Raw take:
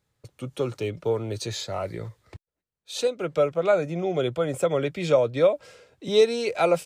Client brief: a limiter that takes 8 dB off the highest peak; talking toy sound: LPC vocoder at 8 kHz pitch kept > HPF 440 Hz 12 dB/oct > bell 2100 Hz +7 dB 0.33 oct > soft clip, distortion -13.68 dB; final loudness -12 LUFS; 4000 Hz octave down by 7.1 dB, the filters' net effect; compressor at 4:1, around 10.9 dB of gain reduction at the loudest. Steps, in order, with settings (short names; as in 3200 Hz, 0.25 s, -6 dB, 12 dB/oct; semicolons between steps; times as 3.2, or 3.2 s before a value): bell 4000 Hz -8.5 dB; compressor 4:1, threshold -27 dBFS; limiter -24.5 dBFS; LPC vocoder at 8 kHz pitch kept; HPF 440 Hz 12 dB/oct; bell 2100 Hz +7 dB 0.33 oct; soft clip -33 dBFS; gain +29 dB